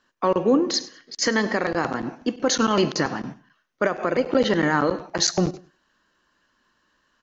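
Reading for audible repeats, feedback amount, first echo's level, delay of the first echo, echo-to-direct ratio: 2, 29%, −21.0 dB, 99 ms, −20.5 dB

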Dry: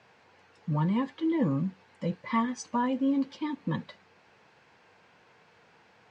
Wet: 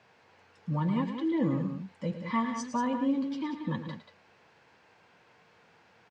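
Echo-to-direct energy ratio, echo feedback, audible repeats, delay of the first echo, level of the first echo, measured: −6.5 dB, repeats not evenly spaced, 2, 110 ms, −10.5 dB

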